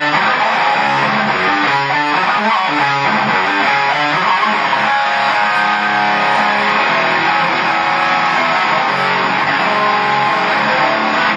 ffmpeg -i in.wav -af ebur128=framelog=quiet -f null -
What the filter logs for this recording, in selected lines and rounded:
Integrated loudness:
  I:         -12.8 LUFS
  Threshold: -22.8 LUFS
Loudness range:
  LRA:         0.4 LU
  Threshold: -32.8 LUFS
  LRA low:   -13.0 LUFS
  LRA high:  -12.6 LUFS